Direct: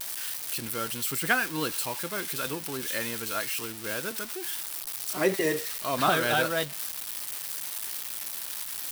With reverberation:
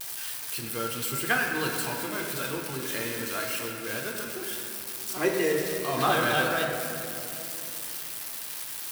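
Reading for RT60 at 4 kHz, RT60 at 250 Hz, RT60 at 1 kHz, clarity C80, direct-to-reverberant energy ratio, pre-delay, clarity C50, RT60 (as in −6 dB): 1.8 s, 4.0 s, 2.7 s, 3.5 dB, 0.5 dB, 3 ms, 2.5 dB, 3.0 s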